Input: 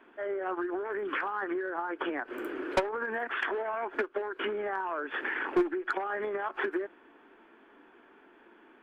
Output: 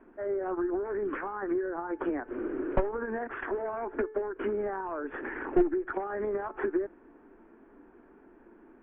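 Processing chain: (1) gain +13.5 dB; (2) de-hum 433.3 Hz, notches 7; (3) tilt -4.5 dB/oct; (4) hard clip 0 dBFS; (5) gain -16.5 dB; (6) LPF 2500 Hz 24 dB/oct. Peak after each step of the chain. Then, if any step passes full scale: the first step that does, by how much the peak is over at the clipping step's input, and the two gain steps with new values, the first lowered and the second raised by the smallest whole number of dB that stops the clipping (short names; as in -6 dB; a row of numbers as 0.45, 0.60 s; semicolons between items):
-6.0, -5.5, +7.0, 0.0, -16.5, -16.0 dBFS; step 3, 7.0 dB; step 1 +6.5 dB, step 5 -9.5 dB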